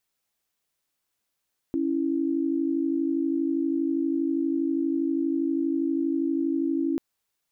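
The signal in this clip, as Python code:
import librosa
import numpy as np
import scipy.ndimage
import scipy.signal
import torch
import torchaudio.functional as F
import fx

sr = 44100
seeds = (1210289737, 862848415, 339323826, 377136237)

y = fx.chord(sr, length_s=5.24, notes=(61, 64), wave='sine', level_db=-25.5)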